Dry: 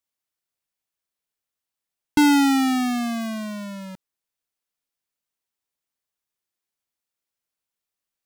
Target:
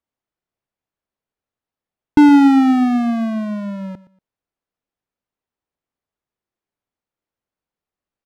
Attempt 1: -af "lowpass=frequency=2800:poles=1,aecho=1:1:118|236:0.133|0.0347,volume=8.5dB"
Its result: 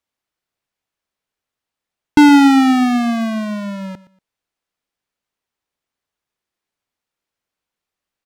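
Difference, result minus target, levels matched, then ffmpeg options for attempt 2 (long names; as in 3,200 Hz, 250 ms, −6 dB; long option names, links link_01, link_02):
2,000 Hz band +5.5 dB
-af "lowpass=frequency=750:poles=1,aecho=1:1:118|236:0.133|0.0347,volume=8.5dB"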